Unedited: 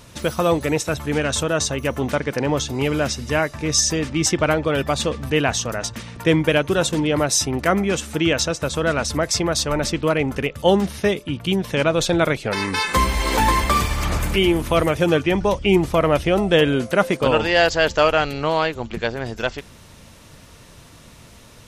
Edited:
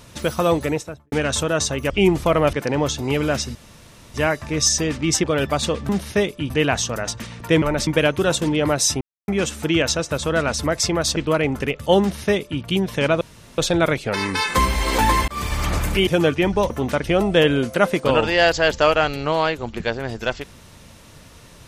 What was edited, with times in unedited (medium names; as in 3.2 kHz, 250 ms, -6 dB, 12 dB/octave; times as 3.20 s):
0.58–1.12 s: studio fade out
1.90–2.24 s: swap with 15.58–16.21 s
3.26 s: insert room tone 0.59 s
4.36–4.61 s: delete
7.52–7.79 s: mute
9.67–9.92 s: move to 6.38 s
10.77–11.38 s: copy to 5.26 s
11.97 s: insert room tone 0.37 s
13.67–13.94 s: fade in
14.46–14.95 s: delete